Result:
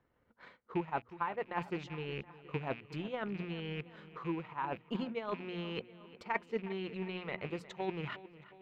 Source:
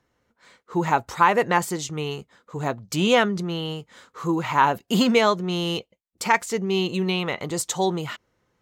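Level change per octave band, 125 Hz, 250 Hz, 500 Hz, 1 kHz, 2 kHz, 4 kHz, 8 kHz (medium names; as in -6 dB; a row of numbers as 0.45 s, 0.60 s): -13.5 dB, -15.5 dB, -15.5 dB, -17.5 dB, -16.5 dB, -20.5 dB, under -35 dB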